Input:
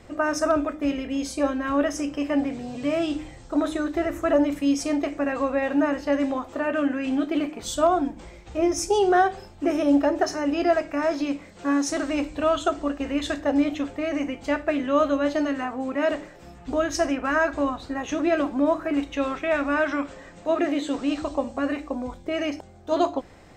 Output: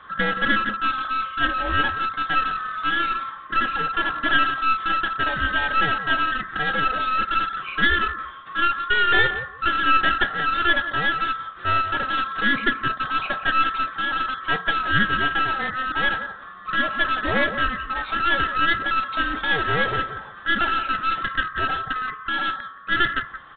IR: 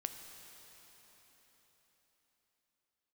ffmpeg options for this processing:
-filter_complex "[0:a]afftfilt=real='real(if(lt(b,960),b+48*(1-2*mod(floor(b/48),2)),b),0)':imag='imag(if(lt(b,960),b+48*(1-2*mod(floor(b/48),2)),b),0)':win_size=2048:overlap=0.75,asplit=2[link_01][link_02];[link_02]adelay=174,lowpass=frequency=2300:poles=1,volume=-12dB,asplit=2[link_03][link_04];[link_04]adelay=174,lowpass=frequency=2300:poles=1,volume=0.17[link_05];[link_01][link_03][link_05]amix=inputs=3:normalize=0,aresample=8000,aeval=exprs='clip(val(0),-1,0.0335)':channel_layout=same,aresample=44100,volume=4dB"

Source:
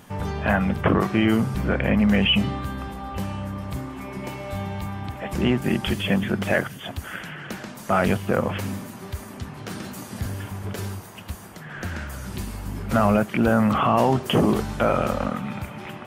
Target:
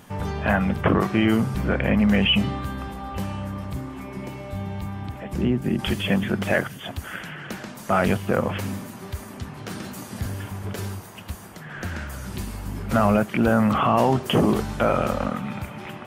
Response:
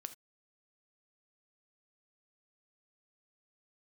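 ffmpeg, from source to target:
-filter_complex "[0:a]asettb=1/sr,asplit=3[link_01][link_02][link_03];[link_01]atrim=end=3.644[link_04];[link_02]atrim=start=3.64:end=5.79,asetpts=PTS-STARTPTS,afade=type=in:duration=0.004:curve=qsin,afade=type=out:start_time=2.146:duration=0.004:curve=qsin,acrossover=split=450[link_05][link_06];[link_06]acompressor=threshold=-40dB:ratio=3[link_07];[link_05][link_07]amix=inputs=2:normalize=0[link_08];[link_03]atrim=start=5.786[link_09];[link_04][link_08]acrossfade=duration=0.004:curve1=hsin:curve2=qsin[link_10];[link_10][link_09]acrossfade=duration=0.004:curve1=qsin:curve2=hsin"

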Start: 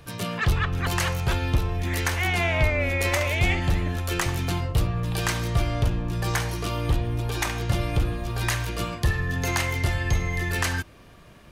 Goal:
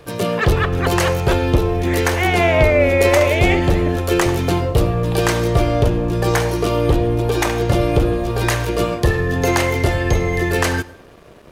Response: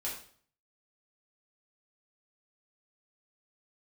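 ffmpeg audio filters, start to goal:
-filter_complex "[0:a]equalizer=frequency=450:width_type=o:width=1.5:gain=12.5,aeval=exprs='sgn(val(0))*max(abs(val(0))-0.00335,0)':channel_layout=same,asplit=2[link_01][link_02];[1:a]atrim=start_sample=2205,adelay=77[link_03];[link_02][link_03]afir=irnorm=-1:irlink=0,volume=-20.5dB[link_04];[link_01][link_04]amix=inputs=2:normalize=0,volume=5dB"

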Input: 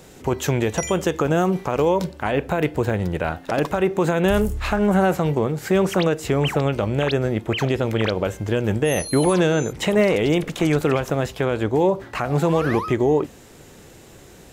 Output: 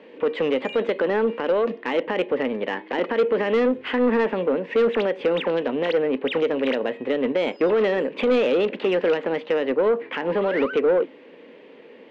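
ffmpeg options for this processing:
ffmpeg -i in.wav -af "asetrate=52920,aresample=44100,highpass=frequency=240:width=0.5412,highpass=frequency=240:width=1.3066,equalizer=frequency=260:width_type=q:width=4:gain=7,equalizer=frequency=480:width_type=q:width=4:gain=9,equalizer=frequency=700:width_type=q:width=4:gain=-7,equalizer=frequency=1300:width_type=q:width=4:gain=-5,equalizer=frequency=1900:width_type=q:width=4:gain=4,equalizer=frequency=2800:width_type=q:width=4:gain=5,lowpass=frequency=3000:width=0.5412,lowpass=frequency=3000:width=1.3066,asoftclip=type=tanh:threshold=-11.5dB,volume=-2dB" out.wav

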